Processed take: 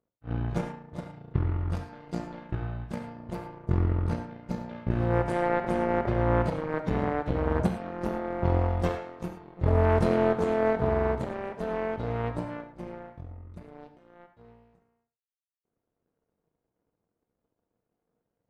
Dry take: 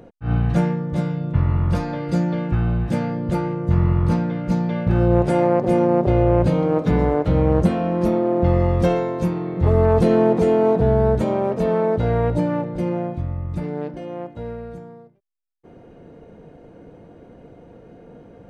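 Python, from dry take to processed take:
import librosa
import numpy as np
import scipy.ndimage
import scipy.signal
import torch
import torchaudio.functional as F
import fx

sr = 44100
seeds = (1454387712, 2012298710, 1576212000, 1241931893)

y = fx.power_curve(x, sr, exponent=2.0)
y = fx.rev_gated(y, sr, seeds[0], gate_ms=130, shape='flat', drr_db=6.5)
y = F.gain(torch.from_numpy(y), -5.0).numpy()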